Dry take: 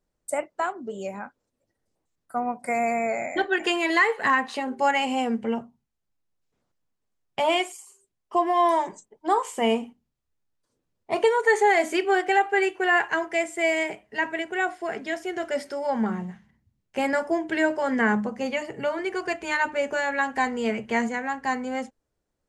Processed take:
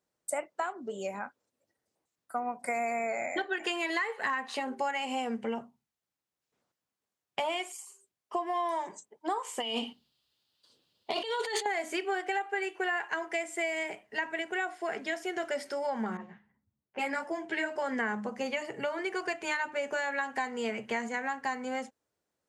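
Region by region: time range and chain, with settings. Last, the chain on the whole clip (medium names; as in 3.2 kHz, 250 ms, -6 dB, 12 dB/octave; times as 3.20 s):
9.60–11.66 s: high-order bell 3.7 kHz +15 dB 1 oct + compressor with a negative ratio -28 dBFS + hard clipper -16 dBFS
16.17–17.76 s: level-controlled noise filter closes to 1.2 kHz, open at -22 dBFS + dynamic bell 2.2 kHz, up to +4 dB, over -39 dBFS, Q 2.3 + three-phase chorus
whole clip: high-pass 93 Hz; bass shelf 350 Hz -8 dB; compression, threshold -29 dBFS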